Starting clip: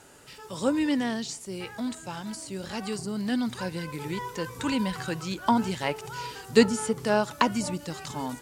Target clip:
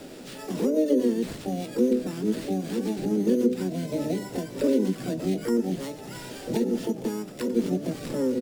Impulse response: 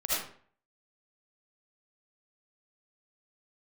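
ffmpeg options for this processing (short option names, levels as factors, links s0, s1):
-filter_complex "[0:a]highpass=f=160:w=0.5412,highpass=f=160:w=1.3066,asplit=2[s0][s1];[s1]adelay=16,volume=0.237[s2];[s0][s2]amix=inputs=2:normalize=0,acrusher=samples=7:mix=1:aa=0.000001,equalizer=f=5800:t=o:w=1.6:g=7.5,asplit=2[s3][s4];[s4]asplit=4[s5][s6][s7][s8];[s5]adelay=90,afreqshift=-34,volume=0.126[s9];[s6]adelay=180,afreqshift=-68,volume=0.0646[s10];[s7]adelay=270,afreqshift=-102,volume=0.0327[s11];[s8]adelay=360,afreqshift=-136,volume=0.0168[s12];[s9][s10][s11][s12]amix=inputs=4:normalize=0[s13];[s3][s13]amix=inputs=2:normalize=0,asoftclip=type=tanh:threshold=0.422,bandreject=f=50:t=h:w=6,bandreject=f=100:t=h:w=6,bandreject=f=150:t=h:w=6,bandreject=f=200:t=h:w=6,bandreject=f=250:t=h:w=6,bandreject=f=300:t=h:w=6,acompressor=threshold=0.01:ratio=6,lowshelf=f=400:t=q:w=3:g=12.5,asplit=3[s14][s15][s16];[s15]asetrate=66075,aresample=44100,atempo=0.66742,volume=0.631[s17];[s16]asetrate=88200,aresample=44100,atempo=0.5,volume=0.631[s18];[s14][s17][s18]amix=inputs=3:normalize=0"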